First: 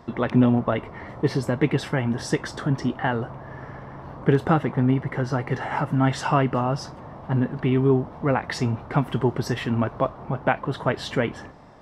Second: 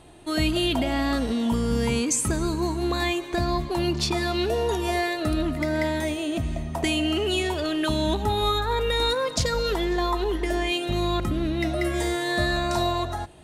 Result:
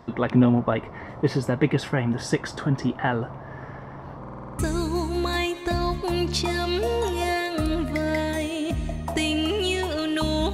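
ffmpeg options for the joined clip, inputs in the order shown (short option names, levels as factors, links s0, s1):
-filter_complex "[0:a]apad=whole_dur=10.53,atrim=end=10.53,asplit=8[s0][s1][s2][s3][s4][s5][s6][s7];[s0]atrim=end=4.242[s8];[s1]atrim=start=4.188:end=4.242[s9];[s2]atrim=start=4.188:end=4.242[s10];[s3]atrim=start=4.188:end=4.242[s11];[s4]atrim=start=4.188:end=4.242[s12];[s5]atrim=start=4.188:end=4.242[s13];[s6]atrim=start=4.188:end=4.242[s14];[s7]atrim=start=4.188:end=4.242[s15];[1:a]atrim=start=2.258:end=8.2[s16];[s8][s9]acrossfade=d=0.004:c1=hsin:c2=hsin[s17];[s17][s10]acrossfade=d=0.004:c1=hsin:c2=hsin[s18];[s18][s11]acrossfade=d=0.004:c1=hsin:c2=hsin[s19];[s19][s12]acrossfade=d=0.004:c1=hsin:c2=hsin[s20];[s20][s13]acrossfade=d=0.004:c1=hsin:c2=hsin[s21];[s21][s14]acrossfade=d=0.004:c1=hsin:c2=hsin[s22];[s22][s15]acrossfade=d=0.004:c1=hsin:c2=hsin[s23];[s23][s16]acrossfade=d=0.004:c1=hsin:c2=hsin"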